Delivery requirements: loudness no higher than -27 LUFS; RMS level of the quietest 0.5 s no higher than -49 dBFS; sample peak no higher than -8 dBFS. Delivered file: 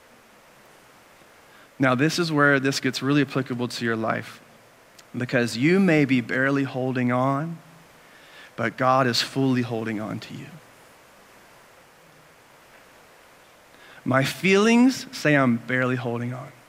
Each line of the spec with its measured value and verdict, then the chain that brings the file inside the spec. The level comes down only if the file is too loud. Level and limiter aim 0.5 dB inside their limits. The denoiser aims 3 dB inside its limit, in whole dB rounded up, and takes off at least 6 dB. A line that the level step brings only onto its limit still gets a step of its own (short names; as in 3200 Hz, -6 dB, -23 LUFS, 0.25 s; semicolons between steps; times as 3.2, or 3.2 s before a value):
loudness -22.5 LUFS: fail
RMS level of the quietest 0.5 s -53 dBFS: OK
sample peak -5.0 dBFS: fail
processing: gain -5 dB